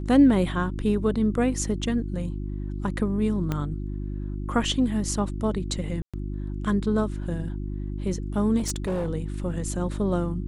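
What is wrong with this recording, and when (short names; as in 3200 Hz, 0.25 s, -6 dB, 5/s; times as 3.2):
hum 50 Hz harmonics 7 -31 dBFS
3.52 pop -14 dBFS
6.02–6.14 gap 0.116 s
8.58–9.1 clipped -23 dBFS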